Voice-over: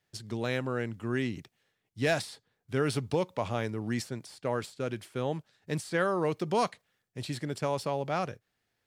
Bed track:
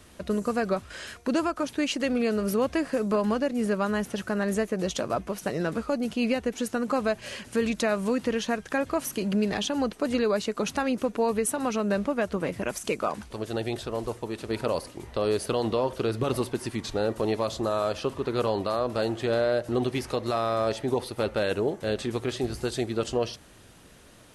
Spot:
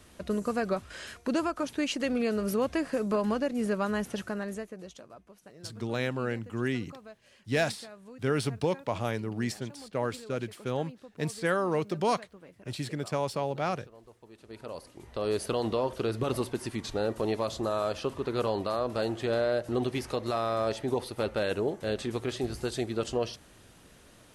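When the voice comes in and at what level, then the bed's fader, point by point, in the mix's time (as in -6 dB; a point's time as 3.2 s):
5.50 s, +0.5 dB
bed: 4.18 s -3 dB
5.14 s -22.5 dB
14.1 s -22.5 dB
15.36 s -3 dB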